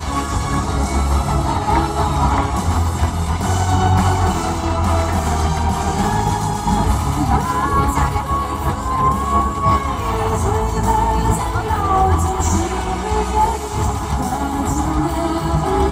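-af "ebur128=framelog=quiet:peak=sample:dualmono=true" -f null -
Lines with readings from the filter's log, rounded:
Integrated loudness:
  I:         -15.2 LUFS
  Threshold: -25.2 LUFS
Loudness range:
  LRA:         1.0 LU
  Threshold: -35.1 LUFS
  LRA low:   -15.6 LUFS
  LRA high:  -14.6 LUFS
Sample peak:
  Peak:       -3.9 dBFS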